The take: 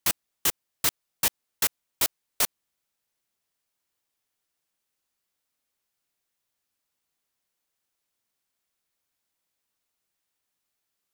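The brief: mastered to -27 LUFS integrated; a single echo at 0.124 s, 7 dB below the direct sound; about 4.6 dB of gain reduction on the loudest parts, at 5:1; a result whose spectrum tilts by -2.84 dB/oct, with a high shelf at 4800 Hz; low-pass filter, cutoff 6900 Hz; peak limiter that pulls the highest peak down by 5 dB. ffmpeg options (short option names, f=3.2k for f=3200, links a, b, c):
-af "lowpass=6.9k,highshelf=f=4.8k:g=-6.5,acompressor=threshold=-31dB:ratio=5,alimiter=limit=-22.5dB:level=0:latency=1,aecho=1:1:124:0.447,volume=13dB"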